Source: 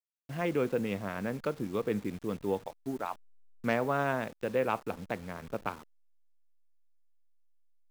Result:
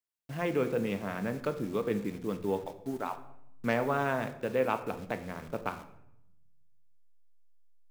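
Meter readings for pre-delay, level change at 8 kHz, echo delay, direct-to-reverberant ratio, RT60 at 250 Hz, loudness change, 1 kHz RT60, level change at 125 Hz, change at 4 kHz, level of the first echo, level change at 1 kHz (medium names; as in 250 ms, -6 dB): 3 ms, +0.5 dB, no echo, 9.0 dB, 1.3 s, +0.5 dB, 0.75 s, +0.5 dB, +0.5 dB, no echo, +0.5 dB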